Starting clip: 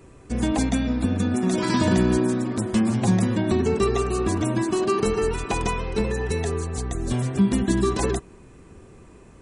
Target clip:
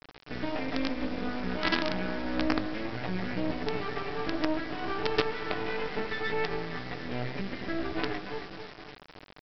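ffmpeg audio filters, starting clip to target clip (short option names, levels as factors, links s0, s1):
-af "bandreject=f=1100:w=5.2,aecho=1:1:273|546|819|1092:0.266|0.109|0.0447|0.0183,alimiter=limit=0.106:level=0:latency=1:release=201,highpass=260,equalizer=f=380:t=q:w=4:g=-4,equalizer=f=900:t=q:w=4:g=-6,equalizer=f=1900:t=q:w=4:g=6,lowpass=f=2700:w=0.5412,lowpass=f=2700:w=1.3066,acontrast=70,aecho=1:1:6.7:0.84,flanger=delay=16.5:depth=4.7:speed=0.28,aresample=11025,acrusher=bits=4:dc=4:mix=0:aa=0.000001,aresample=44100,volume=0.891"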